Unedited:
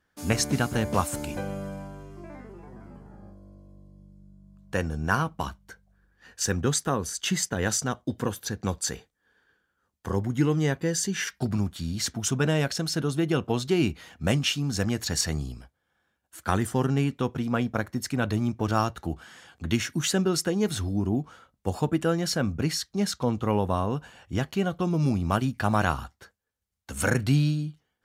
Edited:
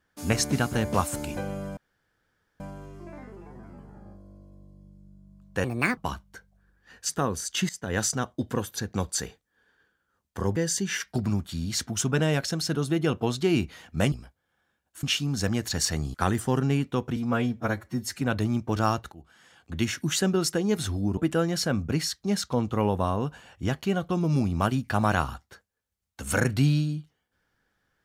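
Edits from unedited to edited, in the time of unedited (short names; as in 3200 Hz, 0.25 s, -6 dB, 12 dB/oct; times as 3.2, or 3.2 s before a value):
1.77 insert room tone 0.83 s
4.81–5.32 speed 154%
6.44–6.78 cut
7.38–7.68 fade in, from -18.5 dB
10.25–10.83 cut
15.5–16.41 move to 14.39
17.43–18.13 stretch 1.5×
19.04–19.9 fade in, from -21.5 dB
21.09–21.87 cut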